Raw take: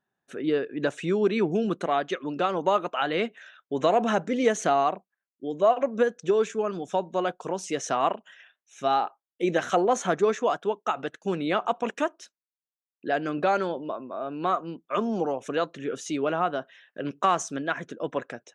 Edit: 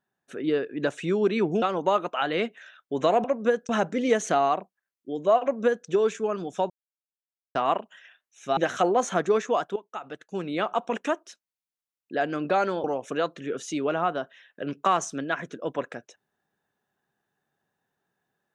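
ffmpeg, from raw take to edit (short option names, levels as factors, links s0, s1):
-filter_complex "[0:a]asplit=9[s0][s1][s2][s3][s4][s5][s6][s7][s8];[s0]atrim=end=1.622[s9];[s1]atrim=start=2.418:end=4.042[s10];[s2]atrim=start=5.768:end=6.222[s11];[s3]atrim=start=4.038:end=7.05,asetpts=PTS-STARTPTS,afade=t=out:st=3.008:d=0.004:c=hsin[s12];[s4]atrim=start=7.05:end=7.9,asetpts=PTS-STARTPTS,volume=0[s13];[s5]atrim=start=7.9:end=8.922,asetpts=PTS-STARTPTS,afade=t=in:d=0.004:c=hsin[s14];[s6]atrim=start=9.498:end=10.69,asetpts=PTS-STARTPTS,afade=t=out:st=1.188:d=0.004:c=hsin:silence=0.199526[s15];[s7]atrim=start=10.69:end=13.772,asetpts=PTS-STARTPTS,afade=t=in:d=1.08:silence=0.199526[s16];[s8]atrim=start=15.218[s17];[s9][s10]acrossfade=d=0.004:c1=hsin:c2=hsin[s18];[s18][s11]acrossfade=d=0.004:c1=hsin:c2=hsin[s19];[s12][s13][s14]concat=n=3:v=0:a=1[s20];[s19][s20]acrossfade=d=0.004:c1=hsin:c2=hsin[s21];[s15][s16]concat=n=2:v=0:a=1[s22];[s21][s22]acrossfade=d=0.004:c1=hsin:c2=hsin[s23];[s23][s17]acrossfade=d=0.004:c1=hsin:c2=hsin"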